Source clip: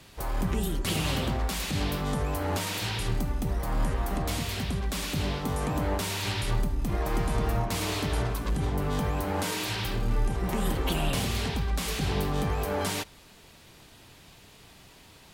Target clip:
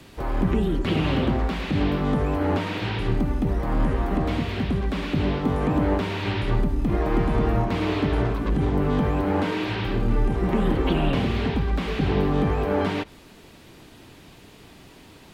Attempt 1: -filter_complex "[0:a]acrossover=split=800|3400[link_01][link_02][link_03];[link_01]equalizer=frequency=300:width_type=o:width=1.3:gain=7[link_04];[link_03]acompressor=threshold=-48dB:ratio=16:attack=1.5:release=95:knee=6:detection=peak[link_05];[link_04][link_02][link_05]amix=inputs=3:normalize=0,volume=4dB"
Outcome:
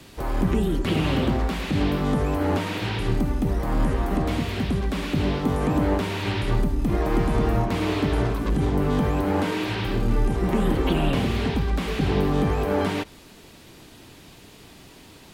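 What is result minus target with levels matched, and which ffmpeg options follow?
downward compressor: peak gain reduction −10.5 dB
-filter_complex "[0:a]acrossover=split=800|3400[link_01][link_02][link_03];[link_01]equalizer=frequency=300:width_type=o:width=1.3:gain=7[link_04];[link_03]acompressor=threshold=-59dB:ratio=16:attack=1.5:release=95:knee=6:detection=peak[link_05];[link_04][link_02][link_05]amix=inputs=3:normalize=0,volume=4dB"

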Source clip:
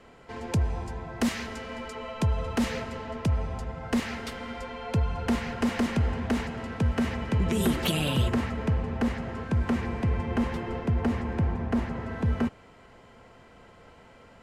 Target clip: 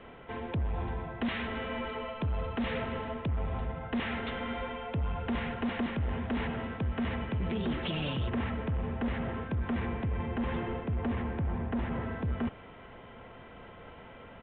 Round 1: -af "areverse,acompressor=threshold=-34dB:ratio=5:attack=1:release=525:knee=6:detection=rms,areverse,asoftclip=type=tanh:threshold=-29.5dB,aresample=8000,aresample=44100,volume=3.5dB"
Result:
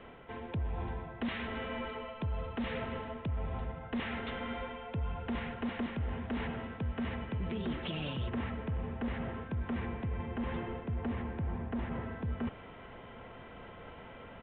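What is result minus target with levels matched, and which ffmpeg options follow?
downward compressor: peak gain reduction +5.5 dB
-af "areverse,acompressor=threshold=-27dB:ratio=5:attack=1:release=525:knee=6:detection=rms,areverse,asoftclip=type=tanh:threshold=-29.5dB,aresample=8000,aresample=44100,volume=3.5dB"

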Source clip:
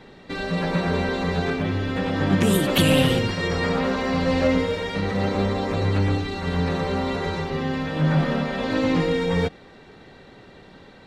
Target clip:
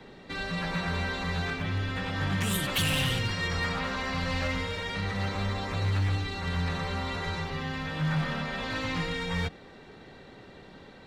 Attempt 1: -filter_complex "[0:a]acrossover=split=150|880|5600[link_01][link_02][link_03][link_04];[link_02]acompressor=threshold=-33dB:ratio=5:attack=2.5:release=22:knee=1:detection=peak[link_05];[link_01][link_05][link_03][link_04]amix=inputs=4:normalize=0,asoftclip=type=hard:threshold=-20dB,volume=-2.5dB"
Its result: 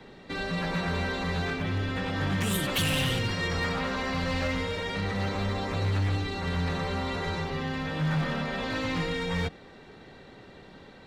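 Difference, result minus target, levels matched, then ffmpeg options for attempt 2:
downward compressor: peak gain reduction −5.5 dB
-filter_complex "[0:a]acrossover=split=150|880|5600[link_01][link_02][link_03][link_04];[link_02]acompressor=threshold=-40dB:ratio=5:attack=2.5:release=22:knee=1:detection=peak[link_05];[link_01][link_05][link_03][link_04]amix=inputs=4:normalize=0,asoftclip=type=hard:threshold=-20dB,volume=-2.5dB"

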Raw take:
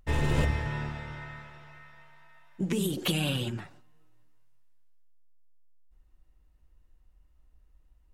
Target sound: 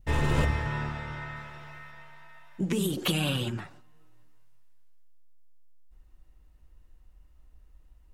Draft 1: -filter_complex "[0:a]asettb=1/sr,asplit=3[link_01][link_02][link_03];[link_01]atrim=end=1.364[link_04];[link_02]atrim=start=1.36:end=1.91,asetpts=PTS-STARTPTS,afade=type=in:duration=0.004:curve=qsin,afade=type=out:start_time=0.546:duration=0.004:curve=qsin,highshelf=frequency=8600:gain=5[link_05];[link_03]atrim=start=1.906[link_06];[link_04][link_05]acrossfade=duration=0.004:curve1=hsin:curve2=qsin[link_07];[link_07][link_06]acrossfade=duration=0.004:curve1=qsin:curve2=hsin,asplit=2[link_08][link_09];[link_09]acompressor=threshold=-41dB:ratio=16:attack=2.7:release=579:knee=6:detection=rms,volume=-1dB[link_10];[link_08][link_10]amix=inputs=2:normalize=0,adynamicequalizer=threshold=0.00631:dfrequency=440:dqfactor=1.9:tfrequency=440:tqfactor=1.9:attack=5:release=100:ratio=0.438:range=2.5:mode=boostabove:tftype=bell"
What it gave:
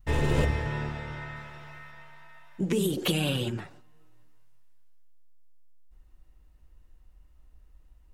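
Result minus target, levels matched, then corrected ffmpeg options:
500 Hz band +3.0 dB
-filter_complex "[0:a]asettb=1/sr,asplit=3[link_01][link_02][link_03];[link_01]atrim=end=1.364[link_04];[link_02]atrim=start=1.36:end=1.91,asetpts=PTS-STARTPTS,afade=type=in:duration=0.004:curve=qsin,afade=type=out:start_time=0.546:duration=0.004:curve=qsin,highshelf=frequency=8600:gain=5[link_05];[link_03]atrim=start=1.906[link_06];[link_04][link_05]acrossfade=duration=0.004:curve1=hsin:curve2=qsin[link_07];[link_07][link_06]acrossfade=duration=0.004:curve1=qsin:curve2=hsin,asplit=2[link_08][link_09];[link_09]acompressor=threshold=-41dB:ratio=16:attack=2.7:release=579:knee=6:detection=rms,volume=-1dB[link_10];[link_08][link_10]amix=inputs=2:normalize=0,adynamicequalizer=threshold=0.00631:dfrequency=1200:dqfactor=1.9:tfrequency=1200:tqfactor=1.9:attack=5:release=100:ratio=0.438:range=2.5:mode=boostabove:tftype=bell"

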